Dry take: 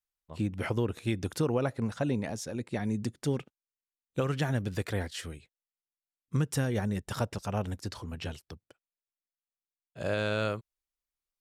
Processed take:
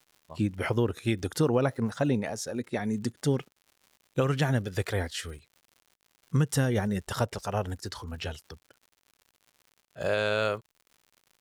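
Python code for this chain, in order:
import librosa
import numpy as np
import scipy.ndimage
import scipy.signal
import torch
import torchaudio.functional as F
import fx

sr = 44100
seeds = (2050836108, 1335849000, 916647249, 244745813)

y = fx.noise_reduce_blind(x, sr, reduce_db=7)
y = fx.dmg_crackle(y, sr, seeds[0], per_s=130.0, level_db=-50.0)
y = y * 10.0 ** (4.0 / 20.0)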